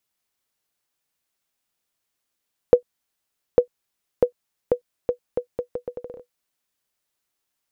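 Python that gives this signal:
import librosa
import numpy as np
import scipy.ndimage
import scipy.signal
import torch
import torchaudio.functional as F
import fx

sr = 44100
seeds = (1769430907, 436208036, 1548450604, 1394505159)

y = fx.bouncing_ball(sr, first_gap_s=0.85, ratio=0.76, hz=490.0, decay_ms=98.0, level_db=-1.5)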